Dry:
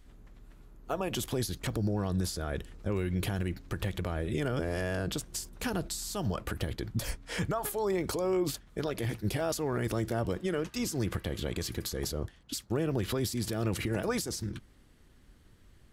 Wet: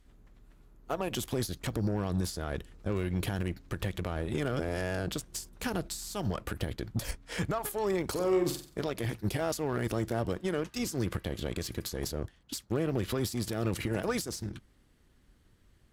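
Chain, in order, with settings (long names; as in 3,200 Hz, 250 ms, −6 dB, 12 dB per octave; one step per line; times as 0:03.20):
harmonic generator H 7 −25 dB, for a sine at −20 dBFS
0:08.11–0:08.84: flutter between parallel walls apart 7.8 metres, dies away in 0.4 s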